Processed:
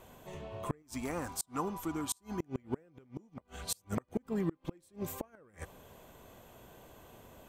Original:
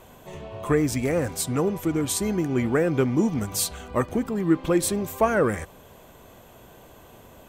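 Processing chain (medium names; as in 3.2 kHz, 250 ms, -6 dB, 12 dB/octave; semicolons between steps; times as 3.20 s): 0.82–2.40 s: graphic EQ 125/500/1000/2000 Hz -12/-12/+9/-7 dB; 3.38–3.98 s: reverse; inverted gate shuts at -15 dBFS, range -33 dB; trim -6.5 dB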